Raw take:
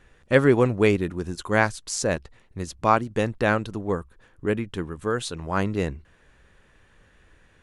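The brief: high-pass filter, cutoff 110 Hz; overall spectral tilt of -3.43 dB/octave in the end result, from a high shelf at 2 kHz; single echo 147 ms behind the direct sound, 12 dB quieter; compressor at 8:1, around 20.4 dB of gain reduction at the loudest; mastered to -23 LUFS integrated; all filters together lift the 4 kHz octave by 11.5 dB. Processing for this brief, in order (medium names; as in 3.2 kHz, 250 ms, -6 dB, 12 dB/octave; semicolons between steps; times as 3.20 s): high-pass 110 Hz; treble shelf 2 kHz +8 dB; peaking EQ 4 kHz +6.5 dB; compression 8:1, threshold -33 dBFS; delay 147 ms -12 dB; trim +14.5 dB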